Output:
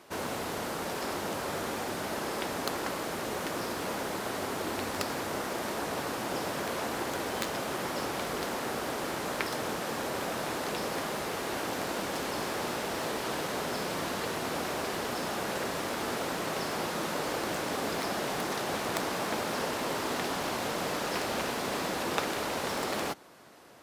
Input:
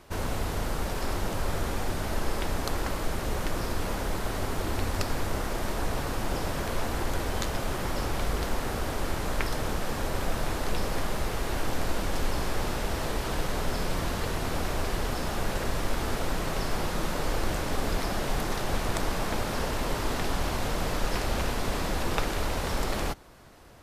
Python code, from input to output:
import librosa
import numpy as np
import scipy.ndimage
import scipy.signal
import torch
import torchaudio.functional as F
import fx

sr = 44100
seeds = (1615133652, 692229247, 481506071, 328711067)

y = fx.tracing_dist(x, sr, depth_ms=0.056)
y = scipy.signal.sosfilt(scipy.signal.butter(2, 210.0, 'highpass', fs=sr, output='sos'), y)